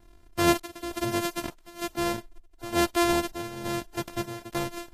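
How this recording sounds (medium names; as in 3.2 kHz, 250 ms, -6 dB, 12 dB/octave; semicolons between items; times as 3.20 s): a buzz of ramps at a fixed pitch in blocks of 128 samples; chopped level 1.1 Hz, depth 60%, duty 65%; Vorbis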